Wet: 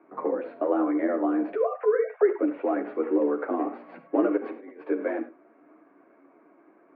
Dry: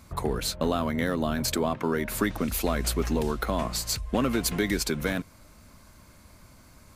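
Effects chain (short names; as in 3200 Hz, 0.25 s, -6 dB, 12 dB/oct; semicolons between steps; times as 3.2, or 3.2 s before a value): 1.55–2.39 sine-wave speech; tilt shelf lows +8 dB, about 910 Hz; 4.36–4.8 negative-ratio compressor -29 dBFS, ratio -0.5; chorus voices 4, 1.1 Hz, delay 11 ms, depth 3 ms; reverb, pre-delay 3 ms, DRR 9 dB; mistuned SSB +66 Hz 240–2200 Hz; gain +1 dB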